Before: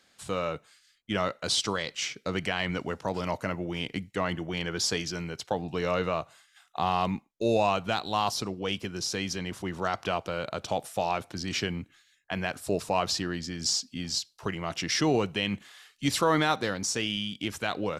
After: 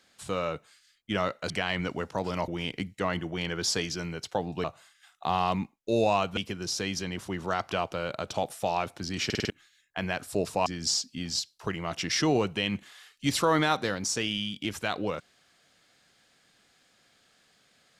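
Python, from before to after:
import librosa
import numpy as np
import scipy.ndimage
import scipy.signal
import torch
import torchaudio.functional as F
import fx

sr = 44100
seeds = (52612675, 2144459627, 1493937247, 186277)

y = fx.edit(x, sr, fx.cut(start_s=1.5, length_s=0.9),
    fx.cut(start_s=3.38, length_s=0.26),
    fx.cut(start_s=5.8, length_s=0.37),
    fx.cut(start_s=7.9, length_s=0.81),
    fx.stutter_over(start_s=11.59, slice_s=0.05, count=5),
    fx.cut(start_s=13.0, length_s=0.45), tone=tone)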